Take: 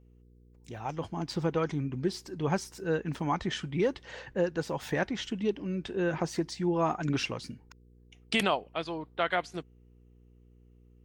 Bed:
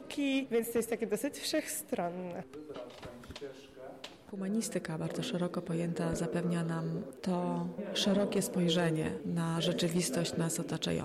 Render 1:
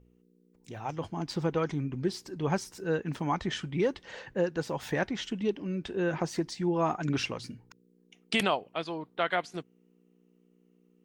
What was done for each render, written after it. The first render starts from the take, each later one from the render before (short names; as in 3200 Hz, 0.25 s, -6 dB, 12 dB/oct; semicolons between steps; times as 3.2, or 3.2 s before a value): de-hum 60 Hz, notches 2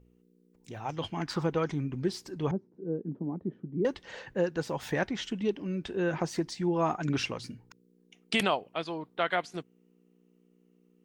0.97–1.42 bell 4200 Hz -> 1000 Hz +15 dB; 2.51–3.85 Butterworth band-pass 260 Hz, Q 0.96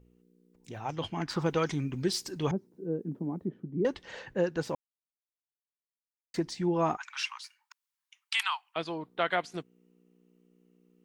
1.46–3.49 high shelf 2600 Hz +11 dB; 4.75–6.34 mute; 6.97–8.76 steep high-pass 890 Hz 72 dB/oct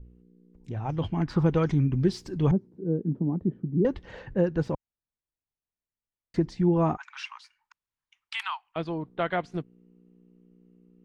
RIAA curve playback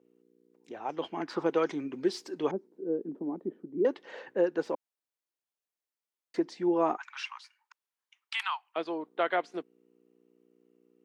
HPF 320 Hz 24 dB/oct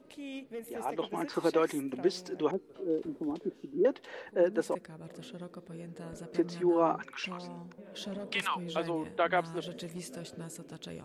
add bed -10.5 dB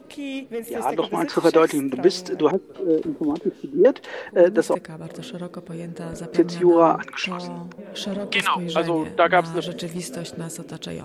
gain +11.5 dB